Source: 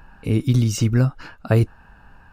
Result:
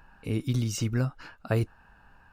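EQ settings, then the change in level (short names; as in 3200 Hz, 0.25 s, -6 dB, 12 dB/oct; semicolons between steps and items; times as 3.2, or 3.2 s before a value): low shelf 410 Hz -4.5 dB; -6.0 dB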